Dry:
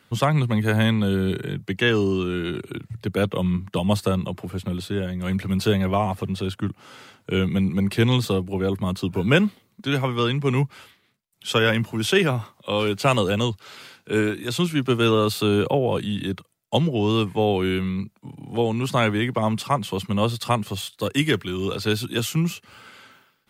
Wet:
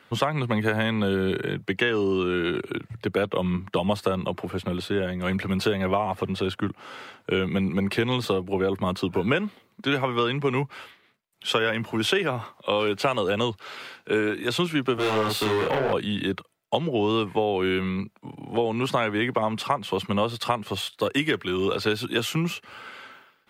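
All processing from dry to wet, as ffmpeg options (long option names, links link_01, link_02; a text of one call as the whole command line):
ffmpeg -i in.wav -filter_complex "[0:a]asettb=1/sr,asplit=3[link_01][link_02][link_03];[link_01]atrim=end=14.944[link_04];[link_02]atrim=start=14.94:end=15.93,asetpts=PTS-STARTPTS,afade=type=in:duration=0.004:curve=qsin,afade=type=out:start_time=0.986:duration=0.004:curve=qsin,highshelf=frequency=9000:gain=3.5,asoftclip=type=hard:threshold=-23.5dB,asplit=2[link_05][link_06];[link_06]adelay=37,volume=-2.5dB[link_07];[link_05][link_07]amix=inputs=2:normalize=0,atrim=end_sample=43659[link_08];[link_03]atrim=start=15.926[link_09];[link_04][link_08]acrossfade=duration=0.004:curve1=hsin:curve2=qsin[link_10];[link_10][link_09]acrossfade=duration=0.004:curve1=qsin:curve2=hsin,bass=frequency=250:gain=-10,treble=frequency=4000:gain=-10,acompressor=threshold=-25dB:ratio=10,volume=5.5dB" out.wav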